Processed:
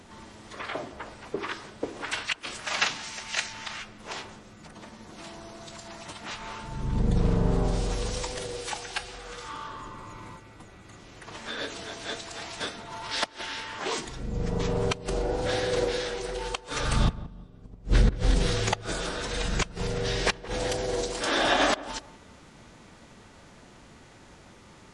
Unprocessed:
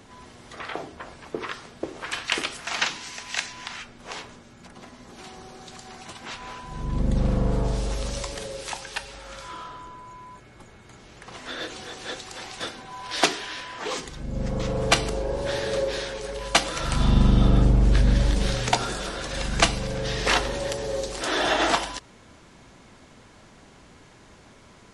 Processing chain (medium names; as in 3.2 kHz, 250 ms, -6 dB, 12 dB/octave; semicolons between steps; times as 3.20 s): inverted gate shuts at -9 dBFS, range -32 dB; filtered feedback delay 174 ms, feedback 31%, low-pass 950 Hz, level -14 dB; formant-preserving pitch shift -2 st